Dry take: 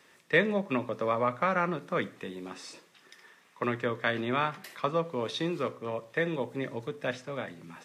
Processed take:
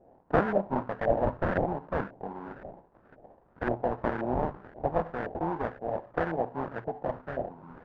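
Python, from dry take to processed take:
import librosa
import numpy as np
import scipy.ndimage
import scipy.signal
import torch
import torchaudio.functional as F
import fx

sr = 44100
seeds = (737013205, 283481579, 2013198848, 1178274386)

y = fx.cvsd(x, sr, bps=16000, at=(4.53, 5.35))
y = fx.sample_hold(y, sr, seeds[0], rate_hz=1200.0, jitter_pct=20)
y = fx.filter_lfo_lowpass(y, sr, shape='saw_up', hz=1.9, low_hz=640.0, high_hz=1600.0, q=3.1)
y = y * librosa.db_to_amplitude(-2.0)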